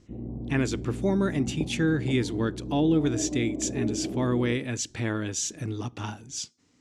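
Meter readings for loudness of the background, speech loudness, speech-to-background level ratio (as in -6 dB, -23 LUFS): -34.5 LUFS, -28.5 LUFS, 6.0 dB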